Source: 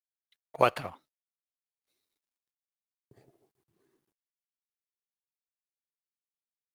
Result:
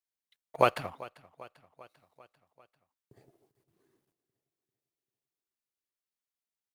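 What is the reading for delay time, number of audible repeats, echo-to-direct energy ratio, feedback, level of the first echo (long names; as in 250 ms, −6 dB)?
394 ms, 4, −18.0 dB, 59%, −20.0 dB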